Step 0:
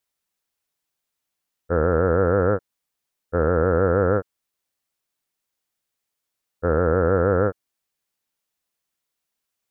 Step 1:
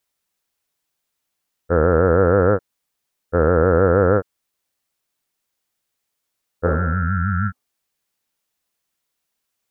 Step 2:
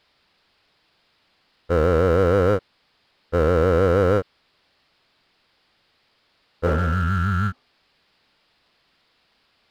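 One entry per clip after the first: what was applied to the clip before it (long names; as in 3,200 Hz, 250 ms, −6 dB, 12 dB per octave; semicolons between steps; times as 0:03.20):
healed spectral selection 0:06.69–0:07.65, 250–1,300 Hz both; level +4 dB
downsampling to 11,025 Hz; power curve on the samples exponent 0.7; level −5 dB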